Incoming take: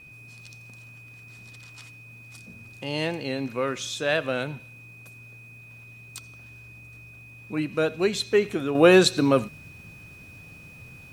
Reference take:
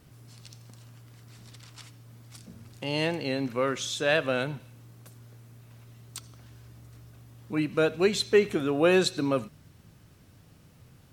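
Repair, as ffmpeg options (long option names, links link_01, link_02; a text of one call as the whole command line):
ffmpeg -i in.wav -af "bandreject=frequency=2500:width=30,asetnsamples=nb_out_samples=441:pad=0,asendcmd='8.75 volume volume -6.5dB',volume=0dB" out.wav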